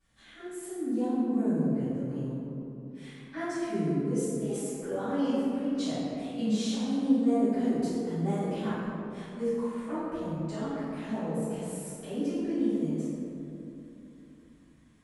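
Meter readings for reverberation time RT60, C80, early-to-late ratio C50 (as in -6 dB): 3.0 s, -2.0 dB, -5.0 dB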